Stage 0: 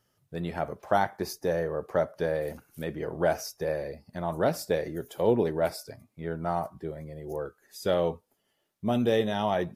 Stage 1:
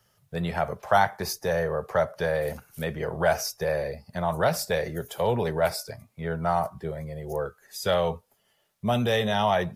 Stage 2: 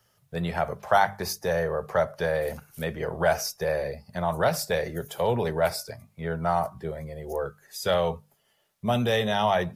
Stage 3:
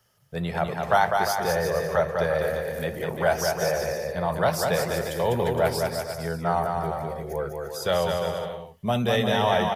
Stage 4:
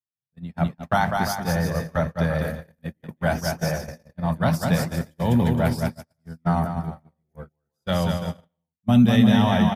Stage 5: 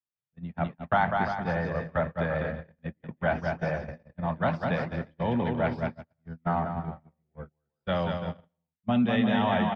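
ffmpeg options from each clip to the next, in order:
-filter_complex "[0:a]equalizer=f=300:w=2.4:g=-13.5,acrossover=split=140|650|4500[a][b][c][d];[b]alimiter=level_in=6.5dB:limit=-24dB:level=0:latency=1,volume=-6.5dB[e];[a][e][c][d]amix=inputs=4:normalize=0,volume=7dB"
-af "bandreject=f=50:t=h:w=6,bandreject=f=100:t=h:w=6,bandreject=f=150:t=h:w=6,bandreject=f=200:t=h:w=6"
-af "aecho=1:1:200|350|462.5|546.9|610.2:0.631|0.398|0.251|0.158|0.1"
-af "agate=range=-46dB:threshold=-25dB:ratio=16:detection=peak,lowshelf=f=330:t=q:w=3:g=8"
-filter_complex "[0:a]lowpass=f=3.1k:w=0.5412,lowpass=f=3.1k:w=1.3066,acrossover=split=270|910|2100[a][b][c][d];[a]acompressor=threshold=-29dB:ratio=6[e];[e][b][c][d]amix=inputs=4:normalize=0,volume=-2.5dB"

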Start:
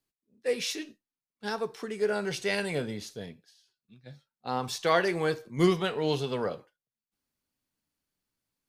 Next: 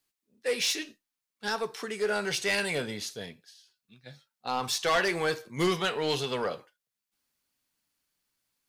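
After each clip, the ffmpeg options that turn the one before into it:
-af "tiltshelf=f=670:g=-5,asoftclip=type=tanh:threshold=-21.5dB,volume=2dB"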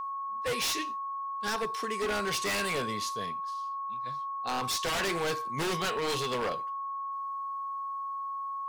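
-af "aeval=exprs='val(0)+0.0224*sin(2*PI*1100*n/s)':c=same,aeval=exprs='0.0562*(abs(mod(val(0)/0.0562+3,4)-2)-1)':c=same"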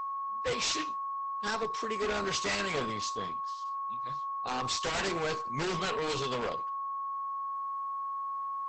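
-af "equalizer=f=67:w=4.2:g=5" -ar 48000 -c:a libopus -b:a 12k

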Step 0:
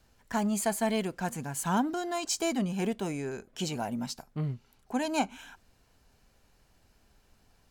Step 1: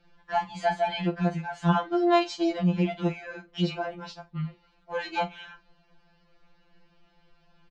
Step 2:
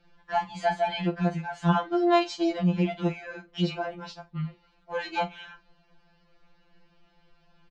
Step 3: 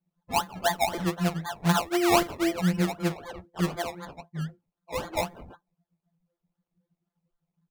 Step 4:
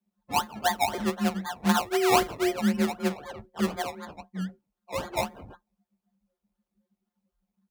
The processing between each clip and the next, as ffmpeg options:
-filter_complex "[0:a]lowpass=f=4.1k:w=0.5412,lowpass=f=4.1k:w=1.3066,asplit=2[a][b];[b]adelay=43,volume=-14dB[c];[a][c]amix=inputs=2:normalize=0,afftfilt=real='re*2.83*eq(mod(b,8),0)':imag='im*2.83*eq(mod(b,8),0)':win_size=2048:overlap=0.75,volume=6dB"
-af anull
-af "highpass=f=62:p=1,acrusher=samples=23:mix=1:aa=0.000001:lfo=1:lforange=13.8:lforate=3.9,afftdn=nr=24:nf=-50"
-af "afreqshift=28"

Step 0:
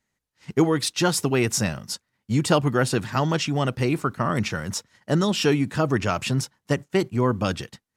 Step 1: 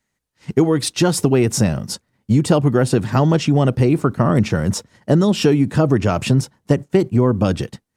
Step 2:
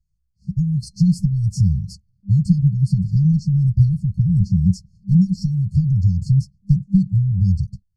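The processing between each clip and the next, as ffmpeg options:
-filter_complex "[0:a]acrossover=split=730[a][b];[a]dynaudnorm=f=150:g=5:m=11.5dB[c];[c][b]amix=inputs=2:normalize=0,equalizer=f=8.9k:t=o:w=0.24:g=3.5,acompressor=threshold=-15dB:ratio=3,volume=3dB"
-af "aemphasis=mode=reproduction:type=riaa,afftfilt=real='re*(1-between(b*sr/4096,200,4200))':imag='im*(1-between(b*sr/4096,200,4200))':win_size=4096:overlap=0.75,flanger=delay=2.8:depth=2:regen=22:speed=0.51:shape=triangular"

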